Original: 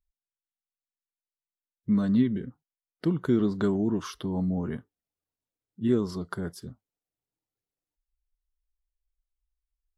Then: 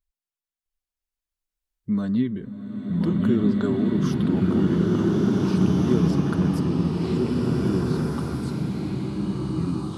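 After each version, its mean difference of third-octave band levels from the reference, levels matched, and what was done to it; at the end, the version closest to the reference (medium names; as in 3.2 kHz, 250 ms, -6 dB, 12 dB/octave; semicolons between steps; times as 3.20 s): 7.5 dB: ever faster or slower copies 658 ms, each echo -3 st, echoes 2; swelling reverb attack 1820 ms, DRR -4 dB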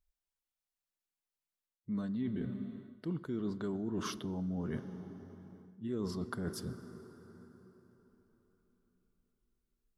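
5.5 dB: plate-style reverb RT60 4.2 s, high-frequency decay 0.7×, DRR 15.5 dB; reverse; compression 8:1, threshold -35 dBFS, peak gain reduction 16.5 dB; reverse; trim +1 dB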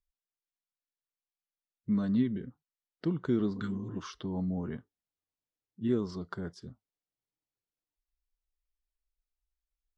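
1.0 dB: low-pass 6.6 kHz 24 dB/octave; spectral replace 3.58–3.94 s, 210–1200 Hz before; trim -5 dB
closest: third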